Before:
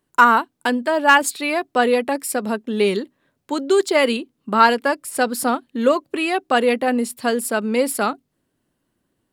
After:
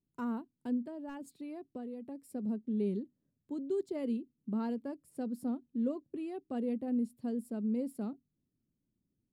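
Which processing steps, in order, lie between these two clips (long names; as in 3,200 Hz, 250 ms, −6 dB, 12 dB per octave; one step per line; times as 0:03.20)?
drawn EQ curve 210 Hz 0 dB, 1,400 Hz −29 dB, 12,000 Hz −24 dB
0:00.83–0:02.23: downward compressor, threshold −32 dBFS, peak gain reduction 9 dB
level −8 dB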